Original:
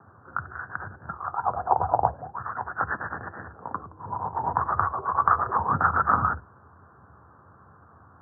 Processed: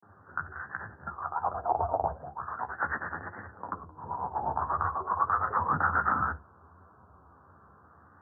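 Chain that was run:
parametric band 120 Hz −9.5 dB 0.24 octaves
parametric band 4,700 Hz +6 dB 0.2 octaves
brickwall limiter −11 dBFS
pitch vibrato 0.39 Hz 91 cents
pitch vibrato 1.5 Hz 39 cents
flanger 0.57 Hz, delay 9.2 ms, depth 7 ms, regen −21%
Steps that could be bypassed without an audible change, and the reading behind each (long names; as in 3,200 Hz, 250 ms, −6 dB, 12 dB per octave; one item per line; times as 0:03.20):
parametric band 4,700 Hz: nothing at its input above 1,900 Hz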